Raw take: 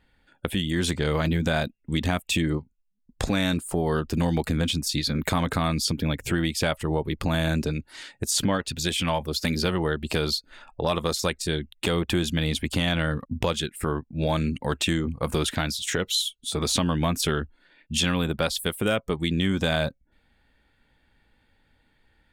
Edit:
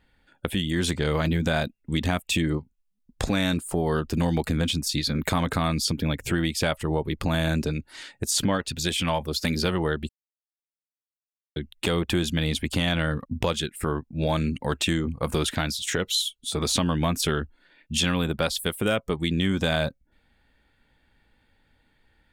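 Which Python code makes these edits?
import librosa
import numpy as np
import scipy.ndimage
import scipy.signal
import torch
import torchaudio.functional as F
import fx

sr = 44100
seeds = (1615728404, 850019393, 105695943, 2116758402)

y = fx.edit(x, sr, fx.silence(start_s=10.09, length_s=1.47), tone=tone)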